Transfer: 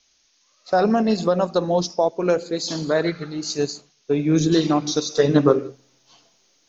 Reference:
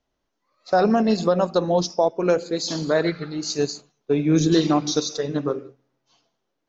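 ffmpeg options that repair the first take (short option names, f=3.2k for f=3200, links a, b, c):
-af "agate=range=-21dB:threshold=-54dB,asetnsamples=n=441:p=0,asendcmd='5.17 volume volume -9dB',volume=0dB"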